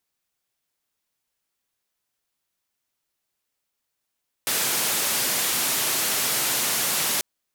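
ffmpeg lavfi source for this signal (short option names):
-f lavfi -i "anoisesrc=c=white:d=2.74:r=44100:seed=1,highpass=f=130,lowpass=f=15000,volume=-17.4dB"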